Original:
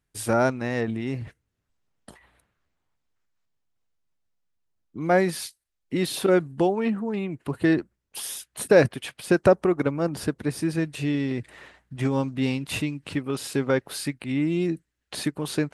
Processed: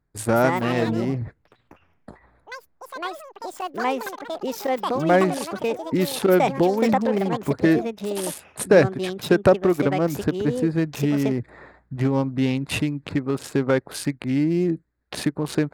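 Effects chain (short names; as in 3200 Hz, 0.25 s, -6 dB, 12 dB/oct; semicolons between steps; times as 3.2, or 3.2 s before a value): Wiener smoothing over 15 samples; in parallel at +0.5 dB: compressor, threshold -28 dBFS, peak gain reduction 15.5 dB; on the sum: echoes that change speed 0.239 s, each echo +6 st, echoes 3, each echo -6 dB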